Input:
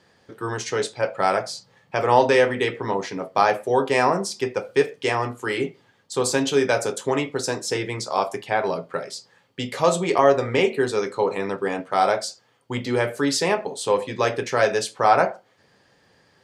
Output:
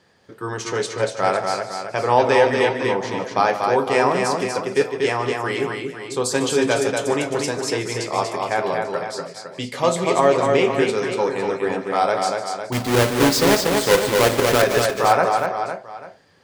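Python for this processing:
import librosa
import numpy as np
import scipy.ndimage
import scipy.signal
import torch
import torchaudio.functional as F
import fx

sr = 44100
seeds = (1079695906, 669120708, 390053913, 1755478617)

y = fx.halfwave_hold(x, sr, at=(12.72, 14.62))
y = fx.echo_multitap(y, sr, ms=(149, 239, 417, 506, 841), db=(-14.0, -4.0, -19.5, -9.5, -19.5))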